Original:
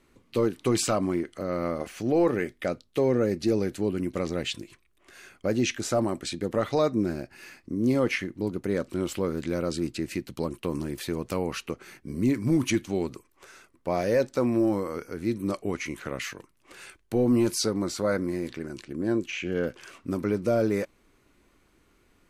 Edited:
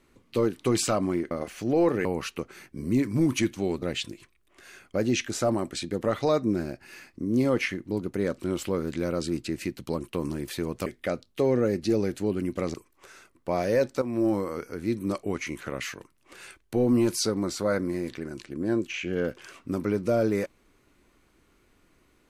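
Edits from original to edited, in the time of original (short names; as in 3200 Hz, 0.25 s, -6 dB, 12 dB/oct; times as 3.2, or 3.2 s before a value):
1.31–1.7 cut
2.44–4.32 swap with 11.36–13.13
14.41–14.66 fade in, from -12 dB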